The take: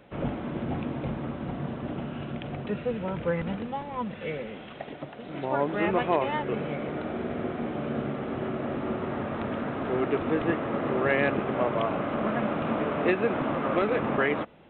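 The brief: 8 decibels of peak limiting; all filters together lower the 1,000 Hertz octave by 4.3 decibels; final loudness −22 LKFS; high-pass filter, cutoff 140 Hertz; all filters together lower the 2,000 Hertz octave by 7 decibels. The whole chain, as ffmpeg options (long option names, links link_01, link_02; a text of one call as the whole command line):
ffmpeg -i in.wav -af "highpass=140,equalizer=frequency=1000:width_type=o:gain=-4,equalizer=frequency=2000:width_type=o:gain=-7.5,volume=11.5dB,alimiter=limit=-11dB:level=0:latency=1" out.wav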